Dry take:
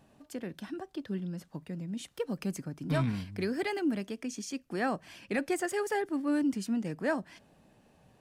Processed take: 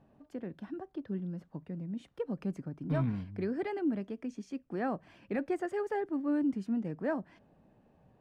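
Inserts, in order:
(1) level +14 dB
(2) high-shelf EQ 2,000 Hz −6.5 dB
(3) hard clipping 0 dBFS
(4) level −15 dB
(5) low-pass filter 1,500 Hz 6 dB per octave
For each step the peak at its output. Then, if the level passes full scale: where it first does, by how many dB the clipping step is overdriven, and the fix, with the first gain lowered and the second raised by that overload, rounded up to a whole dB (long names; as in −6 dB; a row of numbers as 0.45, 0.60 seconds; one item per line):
−5.5, −6.0, −6.0, −21.0, −21.5 dBFS
no step passes full scale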